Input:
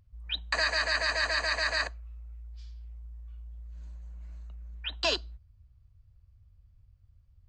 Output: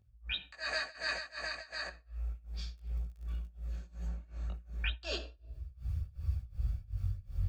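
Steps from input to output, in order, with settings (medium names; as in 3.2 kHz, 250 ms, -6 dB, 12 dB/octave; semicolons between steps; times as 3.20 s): recorder AGC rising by 43 dB/s; bass shelf 100 Hz +8.5 dB; simulated room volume 2800 m³, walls furnished, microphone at 1.1 m; tremolo 2.7 Hz, depth 95%; 1.15–2.04 s: compression 4:1, threshold -31 dBFS, peak gain reduction 6 dB; chorus voices 2, 0.33 Hz, delay 18 ms, depth 4.1 ms; 2.77–3.46 s: crackle 42 per s -48 dBFS; 4.07–4.53 s: treble shelf 5.7 kHz -> 4.1 kHz -7.5 dB; comb of notches 1 kHz; trim -1.5 dB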